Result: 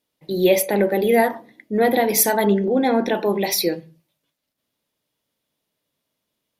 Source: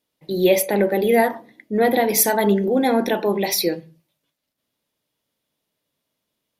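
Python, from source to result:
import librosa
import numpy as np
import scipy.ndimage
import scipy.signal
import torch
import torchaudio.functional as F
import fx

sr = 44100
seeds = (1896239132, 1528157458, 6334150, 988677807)

y = fx.air_absorb(x, sr, metres=67.0, at=(2.45, 3.15))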